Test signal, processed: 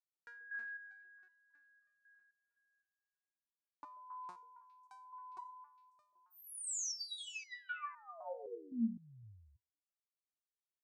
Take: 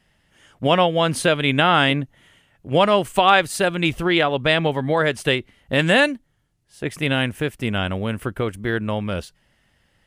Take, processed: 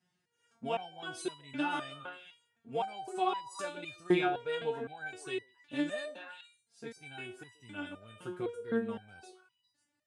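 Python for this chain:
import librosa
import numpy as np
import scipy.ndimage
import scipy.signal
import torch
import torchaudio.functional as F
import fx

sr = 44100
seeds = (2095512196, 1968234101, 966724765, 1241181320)

y = fx.cabinet(x, sr, low_hz=110.0, low_slope=24, high_hz=9100.0, hz=(110.0, 180.0, 560.0, 1100.0, 1900.0, 3100.0), db=(3, -4, -10, -5, -9, -10))
y = fx.echo_stepped(y, sr, ms=136, hz=470.0, octaves=1.4, feedback_pct=70, wet_db=-7.0)
y = fx.resonator_held(y, sr, hz=3.9, low_hz=180.0, high_hz=980.0)
y = F.gain(torch.from_numpy(y), 1.0).numpy()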